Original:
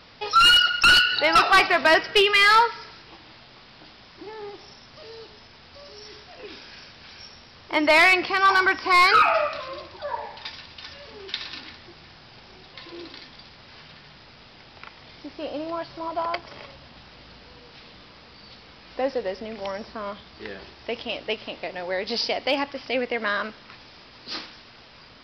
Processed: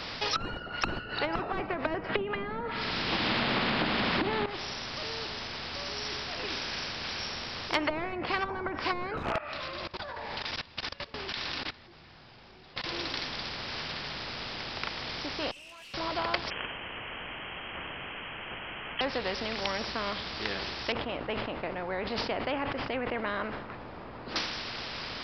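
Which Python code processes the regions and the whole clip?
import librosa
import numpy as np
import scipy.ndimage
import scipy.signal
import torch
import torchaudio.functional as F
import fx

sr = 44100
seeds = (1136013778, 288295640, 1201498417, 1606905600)

y = fx.chain(x, sr, fx.lowpass(hz=4000.0, slope=24),
    fx.peak_eq(hz=220.0, db=13.5, octaves=0.91),
    fx.band_squash(depth_pct=100), at=(2.09, 4.46))
y = fx.chain(y, sr, fx.lowpass(hz=3700.0, slope=6),
    fx.overflow_wrap(gain_db=12.5),
    fx.level_steps(step_db=22), at=(9.17, 12.84))
y = fx.chain(y, sr, fx.bandpass_q(hz=2700.0, q=9.4),
    fx.tube_stage(drive_db=60.0, bias=0.65),
    fx.env_flatten(amount_pct=100), at=(15.51, 15.94))
y = fx.chain(y, sr, fx.highpass(hz=550.0, slope=24),
    fx.freq_invert(carrier_hz=3700), at=(16.5, 19.01))
y = fx.chain(y, sr, fx.bessel_lowpass(hz=810.0, order=2),
    fx.sustainer(db_per_s=96.0), at=(20.92, 24.36))
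y = fx.env_lowpass_down(y, sr, base_hz=360.0, full_db=-15.0)
y = fx.spectral_comp(y, sr, ratio=2.0)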